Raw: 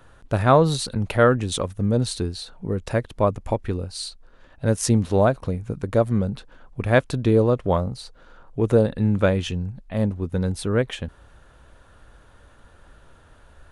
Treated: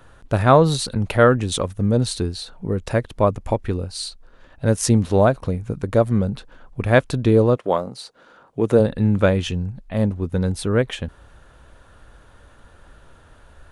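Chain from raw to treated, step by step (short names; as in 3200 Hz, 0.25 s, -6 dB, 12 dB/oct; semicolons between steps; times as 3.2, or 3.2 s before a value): 7.55–8.79 HPF 320 Hz -> 130 Hz 12 dB/oct; gain +2.5 dB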